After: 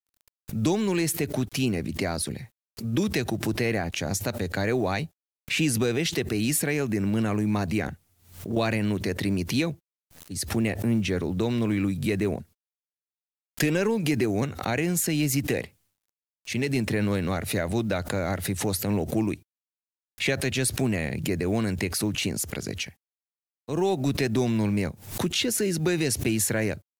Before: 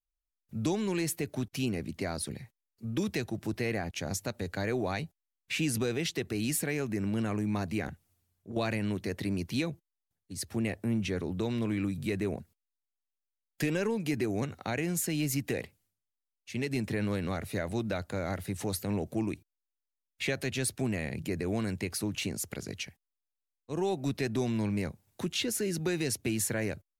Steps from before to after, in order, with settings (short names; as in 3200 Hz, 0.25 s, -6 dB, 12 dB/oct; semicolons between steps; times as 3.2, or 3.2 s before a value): vibrato 1.5 Hz 12 cents; companded quantiser 8-bit; backwards sustainer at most 110 dB/s; gain +6 dB